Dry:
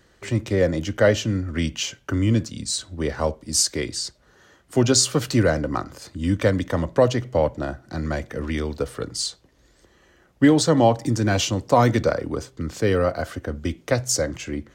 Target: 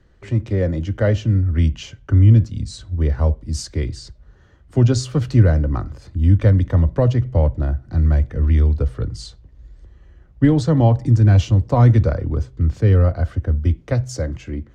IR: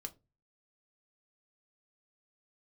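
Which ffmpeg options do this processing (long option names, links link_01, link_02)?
-filter_complex "[0:a]aemphasis=mode=reproduction:type=bsi,acrossover=split=120[link_01][link_02];[link_01]dynaudnorm=framelen=370:gausssize=7:maxgain=12dB[link_03];[link_03][link_02]amix=inputs=2:normalize=0,volume=-4.5dB"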